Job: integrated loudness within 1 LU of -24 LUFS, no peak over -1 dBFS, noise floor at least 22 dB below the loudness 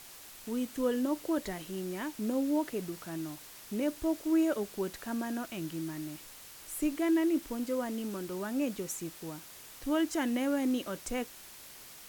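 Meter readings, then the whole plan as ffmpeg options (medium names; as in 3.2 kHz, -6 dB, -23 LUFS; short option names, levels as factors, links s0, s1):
noise floor -51 dBFS; noise floor target -56 dBFS; loudness -33.5 LUFS; peak level -19.5 dBFS; loudness target -24.0 LUFS
-> -af "afftdn=nr=6:nf=-51"
-af "volume=2.99"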